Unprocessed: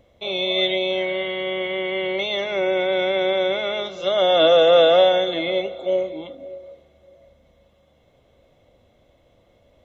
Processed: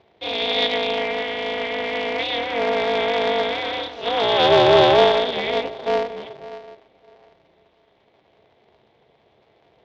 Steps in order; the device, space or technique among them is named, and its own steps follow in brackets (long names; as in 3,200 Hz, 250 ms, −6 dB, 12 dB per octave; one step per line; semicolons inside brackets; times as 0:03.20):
0:03.42–0:04.51: dynamic equaliser 560 Hz, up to −4 dB, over −33 dBFS, Q 4
ring modulator pedal into a guitar cabinet (ring modulator with a square carrier 120 Hz; loudspeaker in its box 110–4,500 Hz, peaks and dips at 180 Hz −9 dB, 260 Hz −6 dB, 1,300 Hz −5 dB)
level +1 dB